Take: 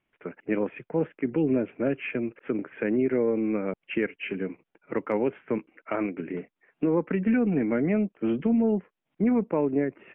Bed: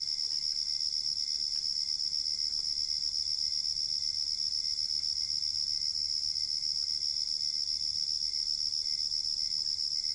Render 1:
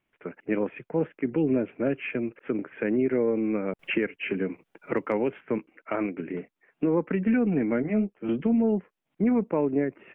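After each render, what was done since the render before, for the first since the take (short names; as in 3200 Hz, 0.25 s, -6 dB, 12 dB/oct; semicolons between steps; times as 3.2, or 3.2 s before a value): 3.79–5.41 three-band squash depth 70%; 7.82–8.29 ensemble effect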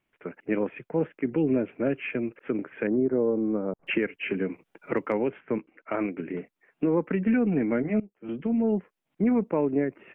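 2.87–3.87 LPF 1200 Hz 24 dB/oct; 5.12–5.94 air absorption 170 m; 8–8.76 fade in, from -19.5 dB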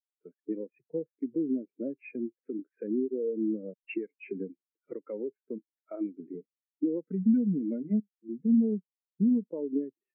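compressor 12:1, threshold -26 dBFS, peak gain reduction 7.5 dB; spectral expander 2.5:1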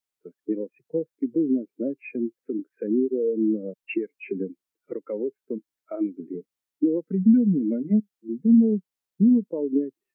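gain +7 dB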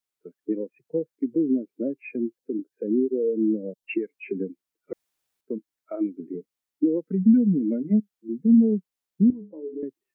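2.38–3.84 band shelf 1700 Hz -12.5 dB 1.3 oct; 4.93–5.41 room tone; 9.3–9.83 metallic resonator 100 Hz, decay 0.31 s, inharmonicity 0.008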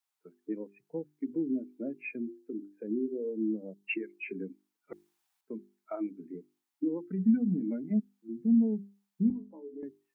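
resonant low shelf 650 Hz -6.5 dB, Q 3; notches 50/100/150/200/250/300/350/400 Hz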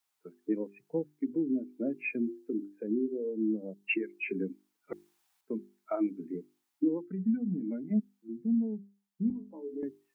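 vocal rider within 5 dB 0.5 s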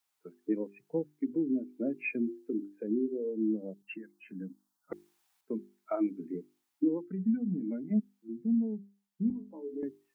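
3.82–4.92 fixed phaser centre 960 Hz, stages 4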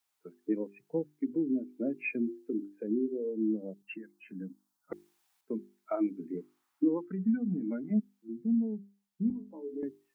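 6.37–7.91 bell 1200 Hz +11.5 dB 1.3 oct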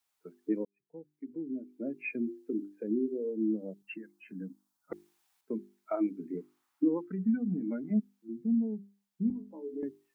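0.65–2.55 fade in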